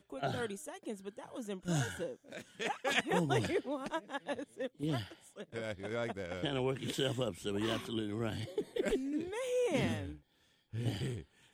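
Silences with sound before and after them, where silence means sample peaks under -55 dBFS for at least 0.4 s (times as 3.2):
10.19–10.73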